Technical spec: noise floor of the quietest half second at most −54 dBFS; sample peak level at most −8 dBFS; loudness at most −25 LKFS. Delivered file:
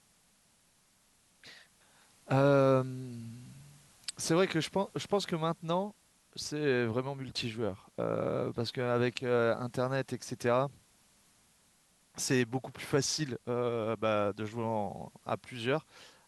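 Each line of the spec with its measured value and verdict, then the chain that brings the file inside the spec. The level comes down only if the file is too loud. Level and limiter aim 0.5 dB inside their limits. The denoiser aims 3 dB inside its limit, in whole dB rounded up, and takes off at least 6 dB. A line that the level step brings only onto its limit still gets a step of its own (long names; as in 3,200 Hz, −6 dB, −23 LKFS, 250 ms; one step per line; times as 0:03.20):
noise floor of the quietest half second −68 dBFS: in spec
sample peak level −14.5 dBFS: in spec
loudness −32.5 LKFS: in spec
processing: no processing needed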